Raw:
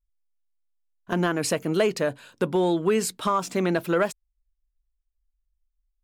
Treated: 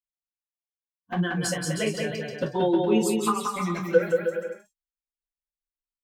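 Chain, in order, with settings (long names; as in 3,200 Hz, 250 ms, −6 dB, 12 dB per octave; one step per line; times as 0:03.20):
spectral dynamics exaggerated over time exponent 2
high-pass filter 75 Hz 6 dB per octave
notch filter 610 Hz, Q 12
flanger swept by the level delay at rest 6.5 ms, full sweep at −21 dBFS
transient designer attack +3 dB, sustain −1 dB
bouncing-ball delay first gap 180 ms, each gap 0.75×, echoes 5
reverb whose tail is shaped and stops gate 80 ms falling, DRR −0.5 dB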